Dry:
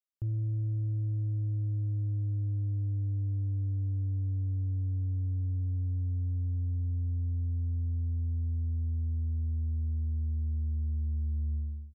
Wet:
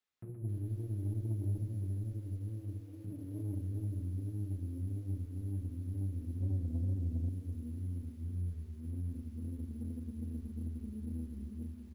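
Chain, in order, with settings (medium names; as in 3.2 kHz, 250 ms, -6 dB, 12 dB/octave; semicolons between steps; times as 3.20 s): 1.54–3.05 s: peaking EQ 220 Hz -12 dB 1.5 oct; high-pass 120 Hz 12 dB/octave; hum notches 50/100/150/200/250 Hz; wow and flutter 150 cents; flange 0.3 Hz, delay 4.4 ms, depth 1.2 ms, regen +72%; peak limiter -43 dBFS, peak gain reduction 6 dB; echo from a far wall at 21 m, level -6 dB; reverberation RT60 0.70 s, pre-delay 3 ms, DRR -4 dB; sample-and-hold 4×; 6.40–7.29 s: tilt EQ -1.5 dB/octave; Chebyshev shaper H 8 -25 dB, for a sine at -24.5 dBFS; bit-crushed delay 263 ms, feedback 35%, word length 10-bit, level -15 dB; trim +3 dB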